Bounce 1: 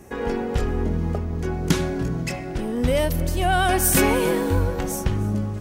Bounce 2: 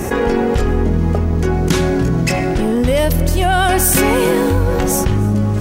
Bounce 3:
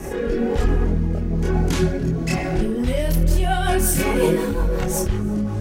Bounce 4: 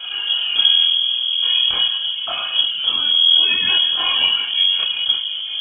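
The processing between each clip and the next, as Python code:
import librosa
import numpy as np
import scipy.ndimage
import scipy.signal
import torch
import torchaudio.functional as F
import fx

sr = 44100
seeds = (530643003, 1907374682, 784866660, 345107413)

y1 = fx.env_flatten(x, sr, amount_pct=70)
y1 = F.gain(torch.from_numpy(y1), 3.0).numpy()
y2 = fx.rotary_switch(y1, sr, hz=1.1, then_hz=5.5, switch_at_s=2.35)
y2 = fx.chorus_voices(y2, sr, voices=6, hz=1.0, base_ms=27, depth_ms=3.6, mix_pct=55)
y2 = F.gain(torch.from_numpy(y2), -2.0).numpy()
y3 = fx.fixed_phaser(y2, sr, hz=880.0, stages=8)
y3 = fx.freq_invert(y3, sr, carrier_hz=3300)
y3 = F.gain(torch.from_numpy(y3), 2.5).numpy()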